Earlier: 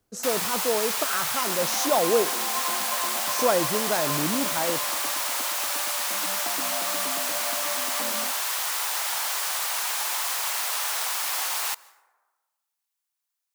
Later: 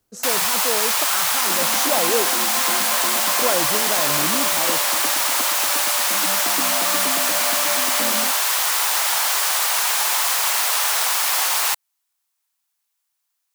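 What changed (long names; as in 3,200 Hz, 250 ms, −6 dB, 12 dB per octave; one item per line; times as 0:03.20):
first sound +9.0 dB
second sound: remove transistor ladder low-pass 1,100 Hz, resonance 60%
reverb: off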